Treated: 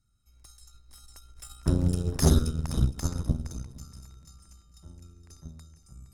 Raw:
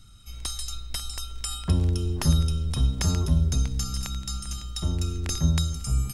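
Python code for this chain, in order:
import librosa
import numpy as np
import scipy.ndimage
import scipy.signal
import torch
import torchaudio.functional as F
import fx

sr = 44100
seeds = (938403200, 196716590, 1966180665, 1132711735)

p1 = fx.doppler_pass(x, sr, speed_mps=5, closest_m=2.8, pass_at_s=2.22)
p2 = fx.peak_eq(p1, sr, hz=3200.0, db=-11.0, octaves=0.82)
p3 = p2 + fx.echo_feedback(p2, sr, ms=466, feedback_pct=33, wet_db=-12, dry=0)
p4 = fx.cheby_harmonics(p3, sr, harmonics=(6,), levels_db=(-10,), full_scale_db=-9.5)
p5 = fx.quant_float(p4, sr, bits=8)
y = fx.upward_expand(p5, sr, threshold_db=-32.0, expansion=1.5)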